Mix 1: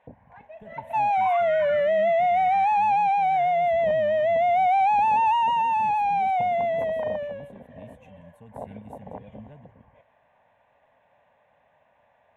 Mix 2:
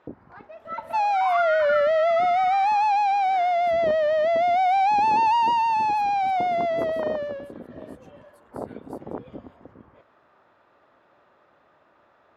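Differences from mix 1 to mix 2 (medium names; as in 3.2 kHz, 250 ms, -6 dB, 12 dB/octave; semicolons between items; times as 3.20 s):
speech: add differentiator; master: remove static phaser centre 1.3 kHz, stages 6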